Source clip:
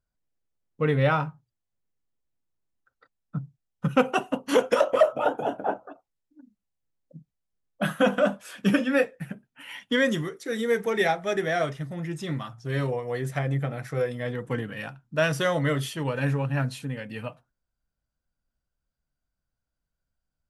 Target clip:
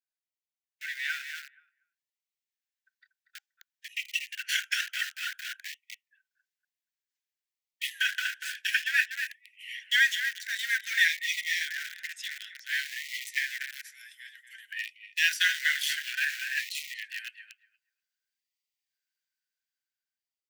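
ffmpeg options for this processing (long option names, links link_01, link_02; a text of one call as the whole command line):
ffmpeg -i in.wav -filter_complex "[0:a]asettb=1/sr,asplit=3[link_01][link_02][link_03];[link_01]atrim=end=13.584[link_04];[link_02]atrim=start=13.58:end=14.72,asetpts=PTS-STARTPTS,afade=type=in:duration=0.004:curve=qsin,afade=type=out:start_time=1.136:duration=0.004:curve=qsin,aderivative[link_05];[link_03]atrim=start=14.716[link_06];[link_04][link_05]acrossfade=duration=0.004:curve1=hsin:curve2=qsin[link_07];[link_07][link_06]acrossfade=duration=0.004:curve1=qsin:curve2=hsin,asplit=2[link_08][link_09];[link_09]adelay=238,lowpass=frequency=1300:poles=1,volume=-4dB,asplit=2[link_10][link_11];[link_11]adelay=238,lowpass=frequency=1300:poles=1,volume=0.21,asplit=2[link_12][link_13];[link_13]adelay=238,lowpass=frequency=1300:poles=1,volume=0.21[link_14];[link_08][link_10][link_12][link_14]amix=inputs=4:normalize=0,asplit=2[link_15][link_16];[link_16]aeval=exprs='val(0)*gte(abs(val(0)),0.0562)':channel_layout=same,volume=-4dB[link_17];[link_15][link_17]amix=inputs=2:normalize=0,asuperstop=centerf=850:order=20:qfactor=0.81,asplit=3[link_18][link_19][link_20];[link_18]afade=type=out:start_time=3.9:duration=0.02[link_21];[link_19]acompressor=threshold=-22dB:ratio=2.5,afade=type=in:start_time=3.9:duration=0.02,afade=type=out:start_time=4.34:duration=0.02[link_22];[link_20]afade=type=in:start_time=4.34:duration=0.02[link_23];[link_21][link_22][link_23]amix=inputs=3:normalize=0,equalizer=frequency=9900:width_type=o:width=0.54:gain=-6,dynaudnorm=framelen=190:gausssize=21:maxgain=15.5dB,afftfilt=real='re*gte(b*sr/1024,680*pow(1900/680,0.5+0.5*sin(2*PI*0.55*pts/sr)))':imag='im*gte(b*sr/1024,680*pow(1900/680,0.5+0.5*sin(2*PI*0.55*pts/sr)))':win_size=1024:overlap=0.75,volume=-5dB" out.wav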